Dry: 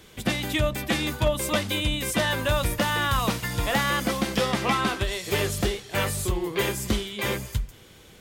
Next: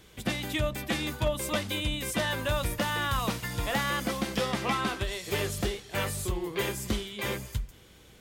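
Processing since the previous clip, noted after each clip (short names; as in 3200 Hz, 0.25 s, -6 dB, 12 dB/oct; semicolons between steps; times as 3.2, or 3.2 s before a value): hum 60 Hz, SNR 31 dB; gain -5 dB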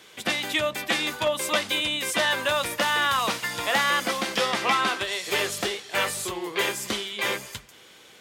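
weighting filter A; gain +7 dB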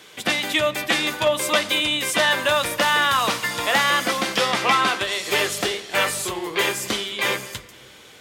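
shoebox room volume 3200 m³, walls mixed, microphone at 0.42 m; gain +4 dB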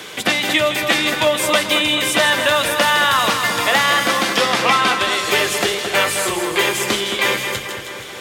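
split-band echo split 2300 Hz, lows 0.219 s, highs 0.159 s, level -8 dB; three-band squash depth 40%; gain +3.5 dB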